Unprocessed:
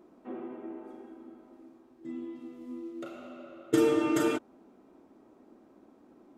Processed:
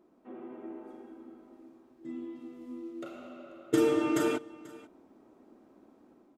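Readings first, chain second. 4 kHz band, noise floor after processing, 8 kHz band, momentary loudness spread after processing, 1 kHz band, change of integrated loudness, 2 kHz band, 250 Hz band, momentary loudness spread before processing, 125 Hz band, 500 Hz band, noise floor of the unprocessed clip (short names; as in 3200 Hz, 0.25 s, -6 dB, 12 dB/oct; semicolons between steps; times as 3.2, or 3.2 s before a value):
-1.0 dB, -63 dBFS, -1.0 dB, 23 LU, -1.0 dB, -0.5 dB, -1.0 dB, -1.0 dB, 22 LU, -1.0 dB, -1.0 dB, -60 dBFS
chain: AGC gain up to 6 dB; echo 0.488 s -20.5 dB; gain -7 dB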